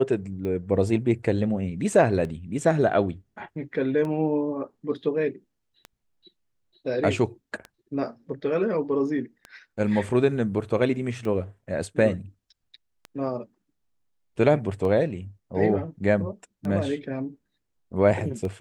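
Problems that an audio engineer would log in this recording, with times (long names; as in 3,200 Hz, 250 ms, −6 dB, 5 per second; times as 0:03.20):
scratch tick 33 1/3 rpm −22 dBFS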